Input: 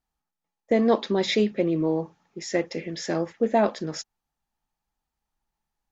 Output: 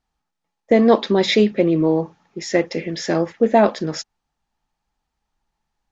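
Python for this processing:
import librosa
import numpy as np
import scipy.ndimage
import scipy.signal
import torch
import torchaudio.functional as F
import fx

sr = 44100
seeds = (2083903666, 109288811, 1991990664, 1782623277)

y = scipy.signal.sosfilt(scipy.signal.butter(2, 6800.0, 'lowpass', fs=sr, output='sos'), x)
y = y * librosa.db_to_amplitude(7.0)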